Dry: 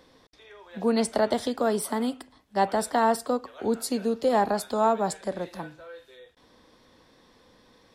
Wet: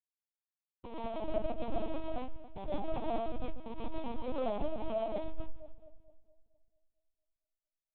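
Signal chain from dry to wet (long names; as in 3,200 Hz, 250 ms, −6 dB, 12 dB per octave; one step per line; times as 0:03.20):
parametric band 1,300 Hz −8.5 dB 2.1 octaves
hum removal 175.7 Hz, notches 14
comparator with hysteresis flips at −26 dBFS
high-frequency loss of the air 310 metres
phaser with its sweep stopped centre 680 Hz, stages 4
echo with a time of its own for lows and highs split 700 Hz, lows 226 ms, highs 141 ms, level −12 dB
convolution reverb RT60 0.35 s, pre-delay 80 ms, DRR −6 dB
linear-prediction vocoder at 8 kHz pitch kept
level −6 dB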